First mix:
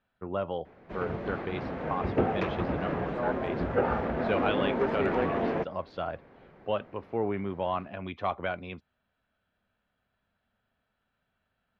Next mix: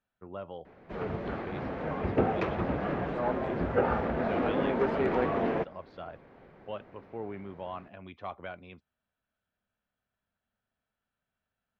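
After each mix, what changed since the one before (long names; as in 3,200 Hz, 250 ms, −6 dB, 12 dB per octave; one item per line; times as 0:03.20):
speech −9.0 dB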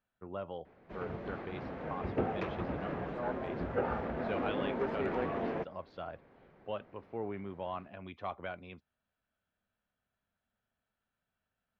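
background −6.5 dB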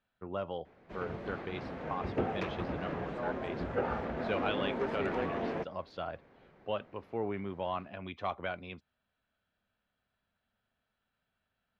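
speech +3.5 dB
master: remove low-pass filter 2,900 Hz 6 dB per octave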